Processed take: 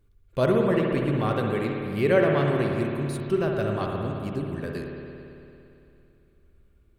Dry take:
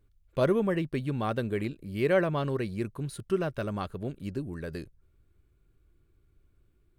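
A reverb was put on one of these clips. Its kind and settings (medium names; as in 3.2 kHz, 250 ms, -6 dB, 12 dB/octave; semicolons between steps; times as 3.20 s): spring tank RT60 2.8 s, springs 56 ms, chirp 55 ms, DRR 0 dB; trim +2.5 dB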